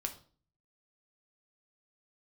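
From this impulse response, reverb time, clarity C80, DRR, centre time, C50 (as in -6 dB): 0.45 s, 17.0 dB, 4.0 dB, 9 ms, 12.5 dB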